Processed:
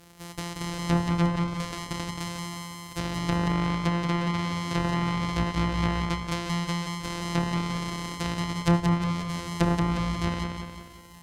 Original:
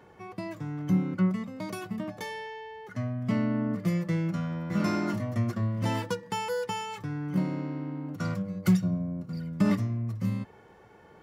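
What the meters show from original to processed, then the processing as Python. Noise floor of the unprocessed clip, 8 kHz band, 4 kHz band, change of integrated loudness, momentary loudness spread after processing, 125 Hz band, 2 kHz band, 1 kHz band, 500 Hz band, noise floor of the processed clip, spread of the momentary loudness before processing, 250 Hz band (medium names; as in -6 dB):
-55 dBFS, +8.5 dB, +9.5 dB, +2.0 dB, 10 LU, +2.5 dB, +6.0 dB, +7.0 dB, +1.0 dB, -46 dBFS, 11 LU, +0.5 dB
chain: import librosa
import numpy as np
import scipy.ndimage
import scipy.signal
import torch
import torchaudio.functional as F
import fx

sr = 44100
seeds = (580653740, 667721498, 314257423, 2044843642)

p1 = np.r_[np.sort(x[:len(x) // 256 * 256].reshape(-1, 256), axis=1).ravel(), x[len(x) // 256 * 256:]]
p2 = fx.high_shelf(p1, sr, hz=3500.0, db=10.0)
p3 = fx.env_lowpass_down(p2, sr, base_hz=1300.0, full_db=-20.5)
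p4 = fx.doubler(p3, sr, ms=30.0, db=-13.5)
y = p4 + fx.echo_feedback(p4, sr, ms=179, feedback_pct=52, wet_db=-4.5, dry=0)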